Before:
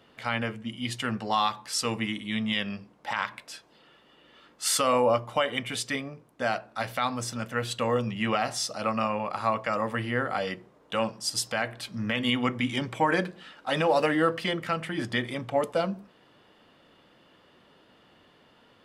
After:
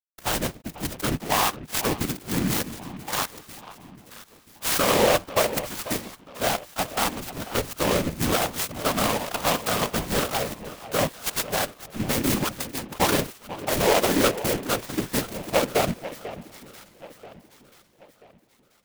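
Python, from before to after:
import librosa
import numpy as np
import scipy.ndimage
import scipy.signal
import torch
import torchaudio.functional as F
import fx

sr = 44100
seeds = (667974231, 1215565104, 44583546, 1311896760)

p1 = fx.bit_reversed(x, sr, seeds[0], block=16)
p2 = fx.level_steps(p1, sr, step_db=15)
p3 = p1 + (p2 * librosa.db_to_amplitude(-1.5))
p4 = fx.cheby1_highpass(p3, sr, hz=760.0, order=2, at=(12.44, 12.9))
p5 = np.sign(p4) * np.maximum(np.abs(p4) - 10.0 ** (-36.0 / 20.0), 0.0)
p6 = fx.whisperise(p5, sr, seeds[1])
p7 = p6 + fx.echo_alternate(p6, sr, ms=492, hz=1200.0, feedback_pct=61, wet_db=-13, dry=0)
p8 = fx.noise_mod_delay(p7, sr, seeds[2], noise_hz=1700.0, depth_ms=0.086)
y = p8 * librosa.db_to_amplitude(2.0)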